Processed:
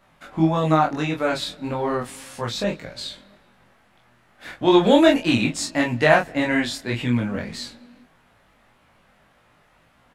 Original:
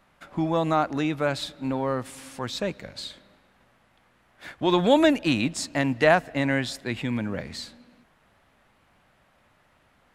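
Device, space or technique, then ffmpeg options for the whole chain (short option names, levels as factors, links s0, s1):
double-tracked vocal: -filter_complex "[0:a]asplit=2[s0][s1];[s1]adelay=25,volume=0.668[s2];[s0][s2]amix=inputs=2:normalize=0,flanger=delay=16.5:depth=4.7:speed=1.7,volume=1.88"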